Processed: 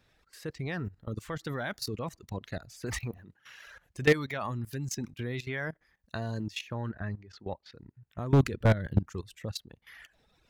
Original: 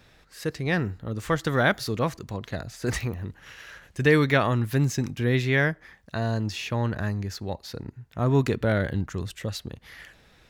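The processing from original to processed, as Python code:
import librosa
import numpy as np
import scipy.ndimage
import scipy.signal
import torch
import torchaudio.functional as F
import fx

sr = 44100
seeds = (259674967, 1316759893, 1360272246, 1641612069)

y = fx.highpass(x, sr, hz=100.0, slope=12, at=(3.17, 3.67))
y = fx.dereverb_blind(y, sr, rt60_s=1.2)
y = fx.lowpass(y, sr, hz=2600.0, slope=12, at=(6.89, 7.73))
y = fx.low_shelf(y, sr, hz=320.0, db=10.5, at=(8.32, 8.99), fade=0.02)
y = fx.level_steps(y, sr, step_db=17)
y = 10.0 ** (-13.0 / 20.0) * (np.abs((y / 10.0 ** (-13.0 / 20.0) + 3.0) % 4.0 - 2.0) - 1.0)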